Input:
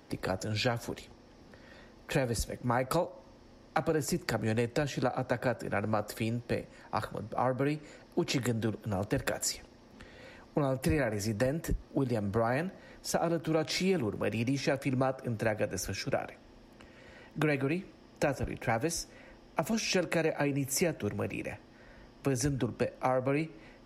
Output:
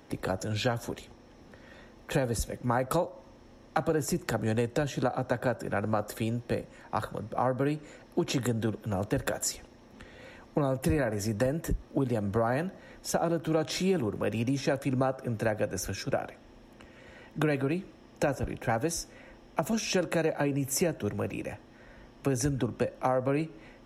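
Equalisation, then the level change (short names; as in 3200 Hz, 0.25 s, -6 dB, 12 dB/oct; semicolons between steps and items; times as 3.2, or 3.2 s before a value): notch 4700 Hz, Q 5.3; dynamic EQ 2200 Hz, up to -7 dB, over -54 dBFS, Q 3.5; +2.0 dB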